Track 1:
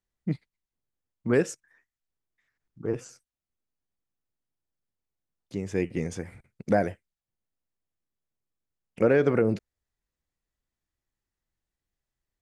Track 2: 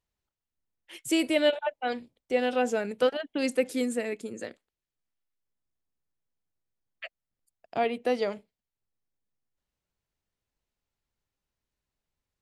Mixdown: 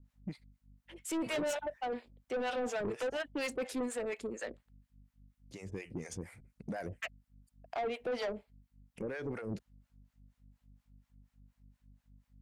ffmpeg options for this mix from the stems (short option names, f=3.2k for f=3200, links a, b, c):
-filter_complex "[0:a]highshelf=f=4.5k:g=8.5,alimiter=limit=-21.5dB:level=0:latency=1:release=63,aeval=exprs='val(0)+0.002*(sin(2*PI*50*n/s)+sin(2*PI*2*50*n/s)/2+sin(2*PI*3*50*n/s)/3+sin(2*PI*4*50*n/s)/4+sin(2*PI*5*50*n/s)/5)':c=same,volume=-2.5dB[a];[1:a]asplit=2[b][c];[c]highpass=f=720:p=1,volume=17dB,asoftclip=type=tanh:threshold=-13.5dB[d];[b][d]amix=inputs=2:normalize=0,lowpass=f=1.8k:p=1,volume=-6dB,volume=-1.5dB[e];[a][e]amix=inputs=2:normalize=0,acrossover=split=570[f][g];[f]aeval=exprs='val(0)*(1-1/2+1/2*cos(2*PI*4.2*n/s))':c=same[h];[g]aeval=exprs='val(0)*(1-1/2-1/2*cos(2*PI*4.2*n/s))':c=same[i];[h][i]amix=inputs=2:normalize=0,asoftclip=type=tanh:threshold=-31dB"